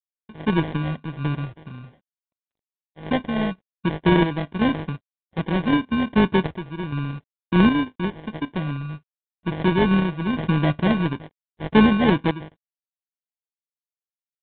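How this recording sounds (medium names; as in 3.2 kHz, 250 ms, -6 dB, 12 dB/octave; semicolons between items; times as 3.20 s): a buzz of ramps at a fixed pitch in blocks of 16 samples; random-step tremolo 2.6 Hz, depth 80%; aliases and images of a low sample rate 1.3 kHz, jitter 0%; G.726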